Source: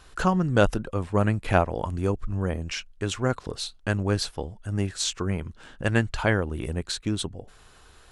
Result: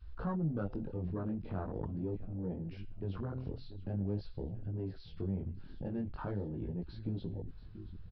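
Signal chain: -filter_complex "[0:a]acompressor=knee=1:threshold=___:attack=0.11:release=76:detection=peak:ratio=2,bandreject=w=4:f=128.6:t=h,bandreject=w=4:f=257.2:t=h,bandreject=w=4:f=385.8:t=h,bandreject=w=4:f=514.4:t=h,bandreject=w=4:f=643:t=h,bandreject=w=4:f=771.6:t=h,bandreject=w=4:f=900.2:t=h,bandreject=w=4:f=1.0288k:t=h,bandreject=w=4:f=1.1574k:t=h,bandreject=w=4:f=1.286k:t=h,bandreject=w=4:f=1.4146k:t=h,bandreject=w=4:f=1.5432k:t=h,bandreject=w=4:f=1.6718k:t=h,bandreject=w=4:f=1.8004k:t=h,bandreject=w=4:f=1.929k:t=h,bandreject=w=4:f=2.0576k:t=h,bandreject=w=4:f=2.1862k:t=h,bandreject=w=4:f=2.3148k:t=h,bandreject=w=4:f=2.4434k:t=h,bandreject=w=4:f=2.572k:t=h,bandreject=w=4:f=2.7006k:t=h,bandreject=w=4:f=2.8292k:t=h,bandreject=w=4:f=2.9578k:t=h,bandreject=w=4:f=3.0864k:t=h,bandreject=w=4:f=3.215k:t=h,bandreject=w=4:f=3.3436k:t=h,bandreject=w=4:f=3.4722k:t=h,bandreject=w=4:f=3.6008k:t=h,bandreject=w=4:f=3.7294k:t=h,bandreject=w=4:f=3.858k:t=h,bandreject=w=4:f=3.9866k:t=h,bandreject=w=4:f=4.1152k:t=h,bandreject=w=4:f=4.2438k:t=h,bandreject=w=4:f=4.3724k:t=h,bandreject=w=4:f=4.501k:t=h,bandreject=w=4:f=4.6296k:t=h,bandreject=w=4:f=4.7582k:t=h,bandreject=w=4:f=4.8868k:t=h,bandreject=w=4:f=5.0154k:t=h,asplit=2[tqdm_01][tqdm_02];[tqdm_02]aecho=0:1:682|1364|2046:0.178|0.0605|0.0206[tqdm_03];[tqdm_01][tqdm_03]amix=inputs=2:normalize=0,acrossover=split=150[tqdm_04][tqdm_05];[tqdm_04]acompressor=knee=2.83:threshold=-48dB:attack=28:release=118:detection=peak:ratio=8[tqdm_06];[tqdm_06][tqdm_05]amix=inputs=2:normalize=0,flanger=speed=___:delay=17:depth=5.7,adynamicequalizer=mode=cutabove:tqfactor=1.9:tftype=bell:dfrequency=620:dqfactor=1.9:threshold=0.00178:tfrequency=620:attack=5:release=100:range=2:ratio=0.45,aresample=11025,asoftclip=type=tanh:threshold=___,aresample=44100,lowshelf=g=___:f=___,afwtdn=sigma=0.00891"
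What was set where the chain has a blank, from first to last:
-36dB, 0.43, -32dB, 9.5, 290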